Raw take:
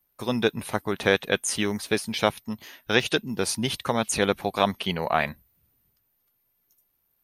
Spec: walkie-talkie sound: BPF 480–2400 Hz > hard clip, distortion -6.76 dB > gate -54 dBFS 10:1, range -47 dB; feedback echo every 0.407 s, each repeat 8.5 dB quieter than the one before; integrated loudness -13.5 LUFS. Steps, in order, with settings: BPF 480–2400 Hz; feedback echo 0.407 s, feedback 38%, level -8.5 dB; hard clip -22 dBFS; gate -54 dBFS 10:1, range -47 dB; gain +18.5 dB

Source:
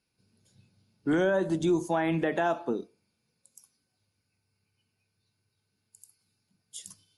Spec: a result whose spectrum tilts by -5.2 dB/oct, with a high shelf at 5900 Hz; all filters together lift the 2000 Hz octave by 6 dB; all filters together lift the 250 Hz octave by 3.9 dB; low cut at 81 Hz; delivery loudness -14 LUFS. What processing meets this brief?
HPF 81 Hz; bell 250 Hz +6 dB; bell 2000 Hz +7.5 dB; high shelf 5900 Hz +5 dB; gain +11 dB

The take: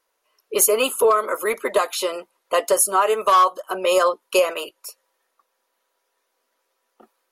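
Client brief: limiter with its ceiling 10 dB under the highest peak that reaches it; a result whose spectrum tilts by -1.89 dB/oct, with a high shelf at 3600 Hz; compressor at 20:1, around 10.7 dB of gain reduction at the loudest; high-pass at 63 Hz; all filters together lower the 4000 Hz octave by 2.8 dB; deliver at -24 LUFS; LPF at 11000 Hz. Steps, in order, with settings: HPF 63 Hz; LPF 11000 Hz; high shelf 3600 Hz +5.5 dB; bell 4000 Hz -8 dB; compressor 20:1, threshold -22 dBFS; gain +7 dB; limiter -14.5 dBFS

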